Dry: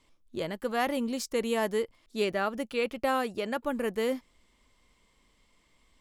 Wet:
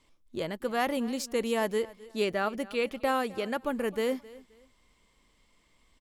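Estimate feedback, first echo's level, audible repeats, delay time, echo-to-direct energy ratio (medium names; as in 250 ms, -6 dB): 27%, -20.0 dB, 2, 263 ms, -19.5 dB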